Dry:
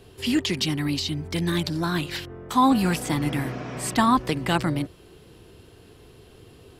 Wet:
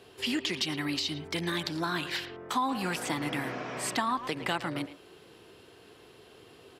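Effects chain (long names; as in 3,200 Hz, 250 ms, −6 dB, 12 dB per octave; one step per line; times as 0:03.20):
high-pass filter 560 Hz 6 dB per octave
high-shelf EQ 6,200 Hz −8 dB
far-end echo of a speakerphone 110 ms, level −13 dB
downward compressor 4 to 1, threshold −29 dBFS, peak gain reduction 10 dB
level +1.5 dB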